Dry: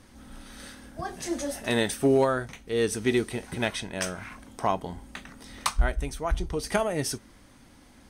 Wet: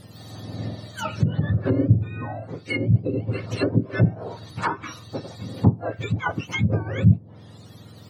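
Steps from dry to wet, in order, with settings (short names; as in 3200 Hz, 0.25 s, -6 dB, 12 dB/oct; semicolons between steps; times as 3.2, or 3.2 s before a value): spectrum mirrored in octaves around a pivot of 1000 Hz; treble ducked by the level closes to 390 Hz, closed at -24 dBFS; gain +8.5 dB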